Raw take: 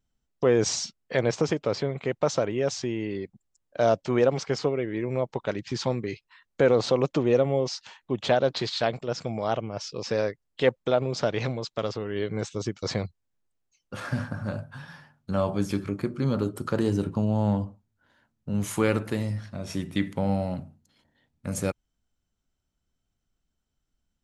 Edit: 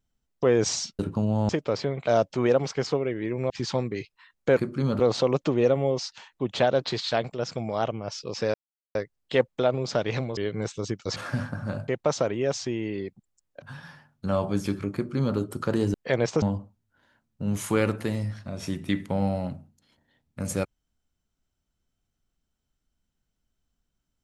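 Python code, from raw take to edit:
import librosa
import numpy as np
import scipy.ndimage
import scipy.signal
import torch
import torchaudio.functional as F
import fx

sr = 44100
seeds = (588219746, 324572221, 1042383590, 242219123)

y = fx.edit(x, sr, fx.swap(start_s=0.99, length_s=0.48, other_s=16.99, other_length_s=0.5),
    fx.move(start_s=2.05, length_s=1.74, to_s=14.67),
    fx.cut(start_s=5.22, length_s=0.4),
    fx.insert_silence(at_s=10.23, length_s=0.41),
    fx.cut(start_s=11.65, length_s=0.49),
    fx.cut(start_s=12.93, length_s=1.02),
    fx.duplicate(start_s=15.99, length_s=0.43, to_s=6.69), tone=tone)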